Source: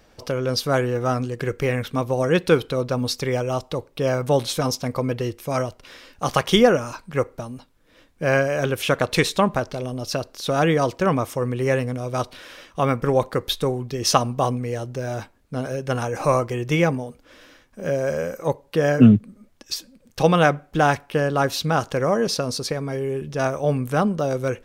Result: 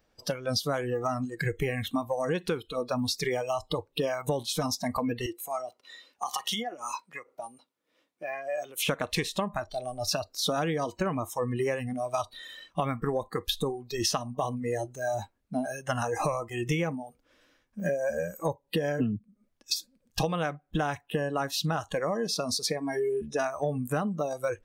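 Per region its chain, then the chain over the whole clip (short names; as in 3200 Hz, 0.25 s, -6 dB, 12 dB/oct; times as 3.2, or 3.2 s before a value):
5.26–8.89 HPF 280 Hz + notch 1600 Hz, Q 8.5 + compressor 5:1, threshold -29 dBFS
whole clip: spectral noise reduction 20 dB; compressor 16:1, threshold -30 dBFS; gain +4.5 dB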